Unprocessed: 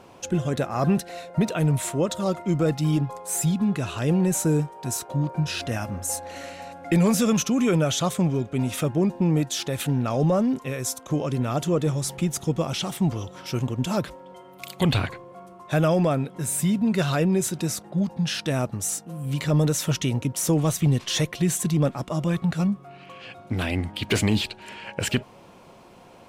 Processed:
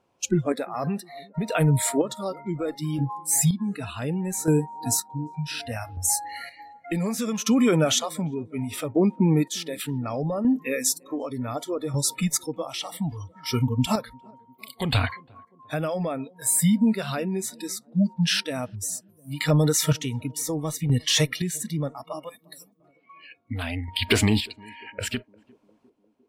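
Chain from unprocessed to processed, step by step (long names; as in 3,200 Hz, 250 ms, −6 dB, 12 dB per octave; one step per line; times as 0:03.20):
0:22.29–0:22.80: first-order pre-emphasis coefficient 0.9
noise reduction from a noise print of the clip's start 27 dB
downward compressor 3 to 1, threshold −23 dBFS, peak gain reduction 5.5 dB
square-wave tremolo 0.67 Hz, depth 60%, duty 35%
on a send: feedback echo with a band-pass in the loop 351 ms, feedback 64%, band-pass 350 Hz, level −24 dB
on the sum: level +6 dB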